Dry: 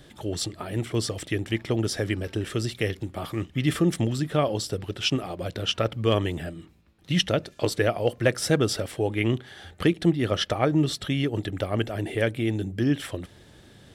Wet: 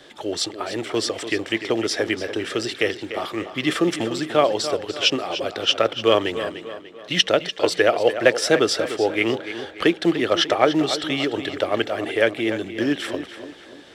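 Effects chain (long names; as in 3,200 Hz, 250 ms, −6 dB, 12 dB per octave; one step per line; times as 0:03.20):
tape delay 294 ms, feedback 47%, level −10 dB, low-pass 5,500 Hz
in parallel at −11.5 dB: floating-point word with a short mantissa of 2 bits
on the sum: three-way crossover with the lows and the highs turned down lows −20 dB, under 300 Hz, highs −13 dB, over 7,200 Hz
level +5.5 dB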